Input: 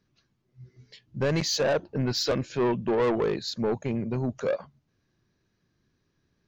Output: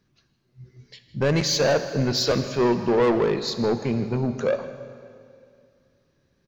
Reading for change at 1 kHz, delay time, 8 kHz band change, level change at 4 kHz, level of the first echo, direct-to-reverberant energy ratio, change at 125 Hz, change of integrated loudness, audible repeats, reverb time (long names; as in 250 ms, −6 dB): +4.5 dB, 160 ms, +4.5 dB, +4.5 dB, −18.5 dB, 9.0 dB, +4.5 dB, +4.5 dB, 1, 2.4 s